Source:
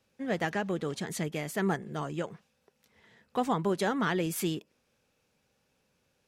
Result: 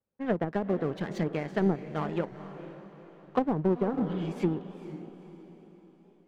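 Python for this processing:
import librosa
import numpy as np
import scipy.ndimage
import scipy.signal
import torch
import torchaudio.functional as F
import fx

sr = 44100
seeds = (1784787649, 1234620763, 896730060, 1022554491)

y = fx.env_lowpass(x, sr, base_hz=1100.0, full_db=-29.5)
y = fx.spec_repair(y, sr, seeds[0], start_s=3.98, length_s=0.29, low_hz=260.0, high_hz=2800.0, source='both')
y = fx.env_lowpass_down(y, sr, base_hz=460.0, full_db=-25.5)
y = fx.power_curve(y, sr, exponent=1.4)
y = fx.echo_diffused(y, sr, ms=477, feedback_pct=45, wet_db=-12.5)
y = fx.record_warp(y, sr, rpm=45.0, depth_cents=100.0)
y = F.gain(torch.from_numpy(y), 7.0).numpy()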